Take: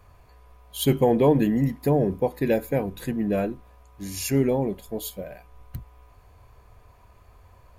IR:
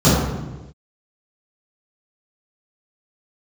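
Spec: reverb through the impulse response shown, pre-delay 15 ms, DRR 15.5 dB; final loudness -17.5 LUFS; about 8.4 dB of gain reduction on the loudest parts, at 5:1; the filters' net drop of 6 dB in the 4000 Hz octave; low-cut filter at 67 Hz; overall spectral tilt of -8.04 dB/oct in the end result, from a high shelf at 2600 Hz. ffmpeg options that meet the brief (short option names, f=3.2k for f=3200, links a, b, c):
-filter_complex "[0:a]highpass=67,highshelf=f=2.6k:g=-3,equalizer=f=4k:t=o:g=-5.5,acompressor=threshold=-24dB:ratio=5,asplit=2[a][b];[1:a]atrim=start_sample=2205,adelay=15[c];[b][c]afir=irnorm=-1:irlink=0,volume=-40.5dB[d];[a][d]amix=inputs=2:normalize=0,volume=11.5dB"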